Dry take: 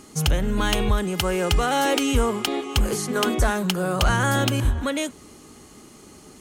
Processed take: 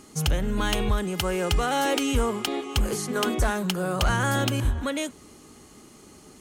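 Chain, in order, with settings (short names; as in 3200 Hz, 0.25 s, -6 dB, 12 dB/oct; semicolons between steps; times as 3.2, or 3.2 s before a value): hard clip -12 dBFS, distortion -31 dB; gain -3 dB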